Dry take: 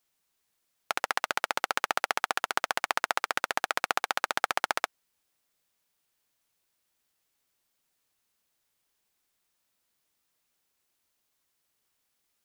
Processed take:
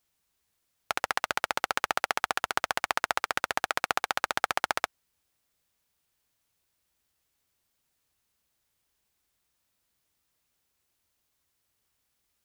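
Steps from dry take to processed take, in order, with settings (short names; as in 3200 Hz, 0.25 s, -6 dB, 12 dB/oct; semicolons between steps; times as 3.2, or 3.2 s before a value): bell 62 Hz +11 dB 2 oct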